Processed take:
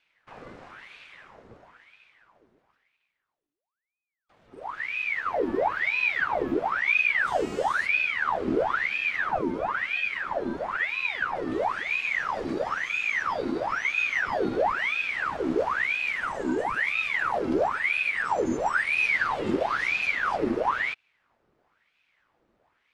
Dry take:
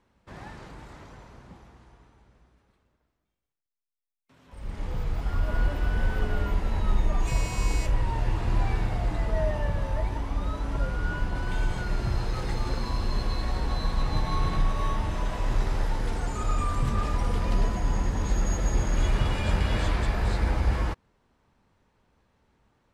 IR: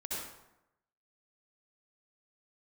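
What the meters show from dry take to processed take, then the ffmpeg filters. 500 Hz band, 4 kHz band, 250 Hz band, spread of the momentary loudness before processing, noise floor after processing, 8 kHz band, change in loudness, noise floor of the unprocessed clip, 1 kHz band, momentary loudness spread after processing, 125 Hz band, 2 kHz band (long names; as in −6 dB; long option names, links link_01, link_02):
+6.5 dB, +1.5 dB, +3.0 dB, 6 LU, −81 dBFS, can't be measured, +3.5 dB, −78 dBFS, +6.5 dB, 6 LU, −18.5 dB, +14.0 dB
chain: -filter_complex "[0:a]aemphasis=mode=reproduction:type=cd,acrossover=split=180|3000[link_01][link_02][link_03];[link_02]acompressor=threshold=-32dB:ratio=6[link_04];[link_01][link_04][link_03]amix=inputs=3:normalize=0,aeval=exprs='val(0)*sin(2*PI*1400*n/s+1400*0.8/1*sin(2*PI*1*n/s))':channel_layout=same"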